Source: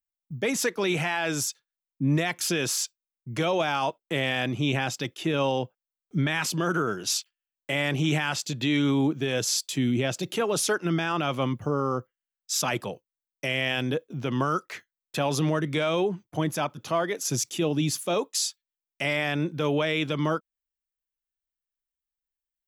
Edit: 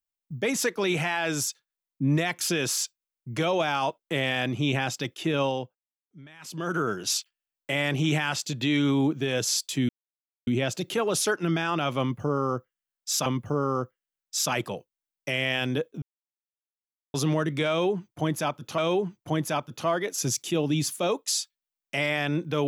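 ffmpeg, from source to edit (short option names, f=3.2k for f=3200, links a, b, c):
-filter_complex "[0:a]asplit=8[a][b][c][d][e][f][g][h];[a]atrim=end=5.87,asetpts=PTS-STARTPTS,afade=t=out:st=5.41:d=0.46:silence=0.0749894[i];[b]atrim=start=5.87:end=6.39,asetpts=PTS-STARTPTS,volume=-22.5dB[j];[c]atrim=start=6.39:end=9.89,asetpts=PTS-STARTPTS,afade=t=in:d=0.46:silence=0.0749894,afade=t=out:st=3.496:d=0.004:c=hsin,apad=pad_dur=0.58[k];[d]atrim=start=9.89:end=12.682,asetpts=PTS-STARTPTS,afade=t=in:d=0.004:c=hsin[l];[e]atrim=start=11.418:end=14.18,asetpts=PTS-STARTPTS,afade=t=out:st=2.758:d=0.004:c=hsin[m];[f]atrim=start=14.18:end=15.3,asetpts=PTS-STARTPTS,volume=0[n];[g]atrim=start=15.3:end=16.942,asetpts=PTS-STARTPTS,afade=t=in:d=0.004:c=hsin[o];[h]atrim=start=15.848[p];[i][j][k][l]concat=n=4:v=0:a=1[q];[m][n][o]concat=n=3:v=0:a=1[r];[q][r]acrossfade=d=0.004:c1=hsin:c2=hsin[s];[s][p]acrossfade=d=0.004:c1=hsin:c2=hsin"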